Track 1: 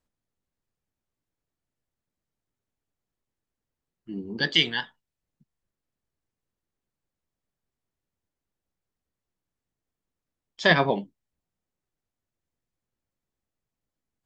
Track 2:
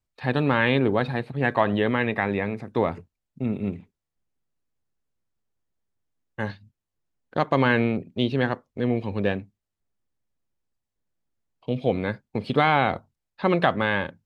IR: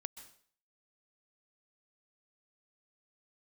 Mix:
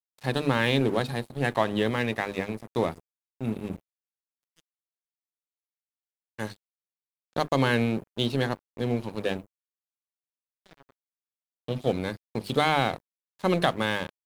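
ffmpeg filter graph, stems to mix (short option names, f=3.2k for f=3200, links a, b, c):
-filter_complex "[0:a]volume=-19.5dB,asplit=2[a][b];[b]volume=-14.5dB[c];[1:a]highpass=55,bandreject=f=50:t=h:w=6,bandreject=f=100:t=h:w=6,bandreject=f=150:t=h:w=6,bandreject=f=200:t=h:w=6,bandreject=f=250:t=h:w=6,bandreject=f=300:t=h:w=6,crystalizer=i=9.5:c=0,volume=0.5dB[d];[2:a]atrim=start_sample=2205[e];[c][e]afir=irnorm=-1:irlink=0[f];[a][d][f]amix=inputs=3:normalize=0,equalizer=f=2.2k:w=0.4:g=-13.5,bandreject=f=50:t=h:w=6,bandreject=f=100:t=h:w=6,bandreject=f=150:t=h:w=6,bandreject=f=200:t=h:w=6,bandreject=f=250:t=h:w=6,bandreject=f=300:t=h:w=6,bandreject=f=350:t=h:w=6,bandreject=f=400:t=h:w=6,aeval=exprs='sgn(val(0))*max(abs(val(0))-0.0119,0)':c=same"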